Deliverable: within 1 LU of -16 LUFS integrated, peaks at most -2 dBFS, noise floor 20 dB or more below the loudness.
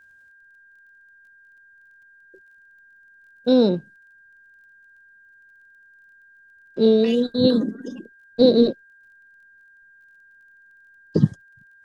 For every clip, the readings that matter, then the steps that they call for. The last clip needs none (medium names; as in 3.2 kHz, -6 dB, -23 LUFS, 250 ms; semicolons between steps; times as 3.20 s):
tick rate 20 per s; steady tone 1.6 kHz; tone level -50 dBFS; loudness -19.5 LUFS; peak level -3.0 dBFS; loudness target -16.0 LUFS
-> de-click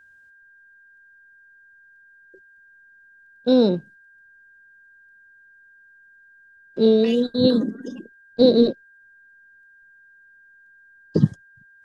tick rate 0 per s; steady tone 1.6 kHz; tone level -50 dBFS
-> band-stop 1.6 kHz, Q 30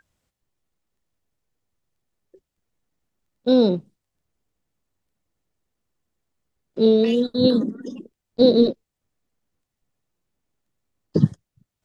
steady tone not found; loudness -19.5 LUFS; peak level -3.0 dBFS; loudness target -16.0 LUFS
-> trim +3.5 dB; peak limiter -2 dBFS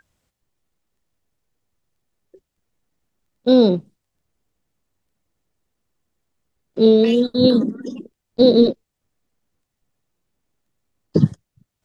loudness -16.5 LUFS; peak level -2.0 dBFS; noise floor -80 dBFS